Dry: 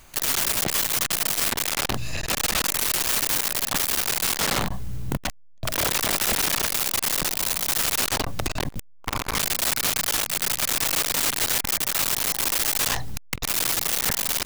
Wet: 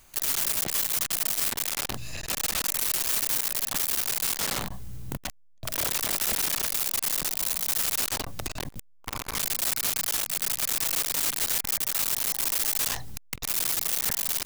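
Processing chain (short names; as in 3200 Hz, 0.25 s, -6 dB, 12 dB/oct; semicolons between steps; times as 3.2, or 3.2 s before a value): high shelf 5300 Hz +6.5 dB; gain -8 dB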